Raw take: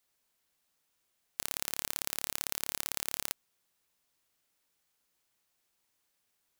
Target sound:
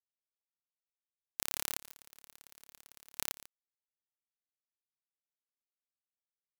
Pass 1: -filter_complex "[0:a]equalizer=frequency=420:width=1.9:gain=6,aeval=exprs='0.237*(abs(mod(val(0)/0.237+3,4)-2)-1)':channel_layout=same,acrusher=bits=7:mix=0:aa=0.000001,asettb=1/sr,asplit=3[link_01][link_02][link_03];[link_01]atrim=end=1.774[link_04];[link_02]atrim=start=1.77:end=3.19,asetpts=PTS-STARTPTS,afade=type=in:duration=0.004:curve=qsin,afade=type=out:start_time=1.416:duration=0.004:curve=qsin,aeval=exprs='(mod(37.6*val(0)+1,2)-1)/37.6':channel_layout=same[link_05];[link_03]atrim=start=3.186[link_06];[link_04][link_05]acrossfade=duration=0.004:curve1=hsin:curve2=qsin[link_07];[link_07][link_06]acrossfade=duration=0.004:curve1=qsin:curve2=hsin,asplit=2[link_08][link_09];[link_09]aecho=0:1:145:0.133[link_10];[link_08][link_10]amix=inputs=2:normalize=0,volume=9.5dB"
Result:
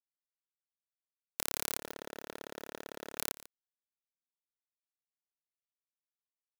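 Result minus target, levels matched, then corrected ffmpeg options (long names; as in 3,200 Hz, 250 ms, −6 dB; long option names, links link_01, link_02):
500 Hz band +13.0 dB
-filter_complex "[0:a]aeval=exprs='0.237*(abs(mod(val(0)/0.237+3,4)-2)-1)':channel_layout=same,acrusher=bits=7:mix=0:aa=0.000001,asettb=1/sr,asplit=3[link_01][link_02][link_03];[link_01]atrim=end=1.774[link_04];[link_02]atrim=start=1.77:end=3.19,asetpts=PTS-STARTPTS,afade=type=in:duration=0.004:curve=qsin,afade=type=out:start_time=1.416:duration=0.004:curve=qsin,aeval=exprs='(mod(37.6*val(0)+1,2)-1)/37.6':channel_layout=same[link_05];[link_03]atrim=start=3.186[link_06];[link_04][link_05]acrossfade=duration=0.004:curve1=hsin:curve2=qsin[link_07];[link_07][link_06]acrossfade=duration=0.004:curve1=qsin:curve2=hsin,asplit=2[link_08][link_09];[link_09]aecho=0:1:145:0.133[link_10];[link_08][link_10]amix=inputs=2:normalize=0,volume=9.5dB"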